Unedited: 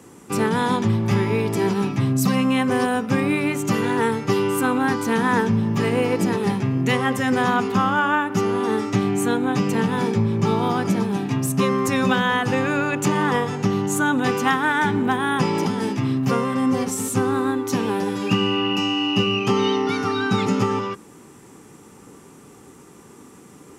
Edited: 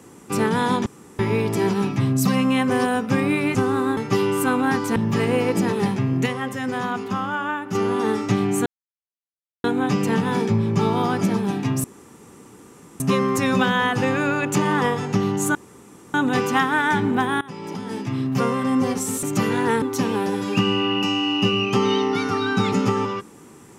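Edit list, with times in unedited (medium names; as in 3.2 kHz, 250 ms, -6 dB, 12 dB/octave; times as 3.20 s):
0.86–1.19 s: room tone
3.55–4.14 s: swap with 17.14–17.56 s
5.13–5.60 s: delete
6.90–8.39 s: gain -6 dB
9.30 s: insert silence 0.98 s
11.50 s: insert room tone 1.16 s
14.05 s: insert room tone 0.59 s
15.32–16.40 s: fade in, from -22.5 dB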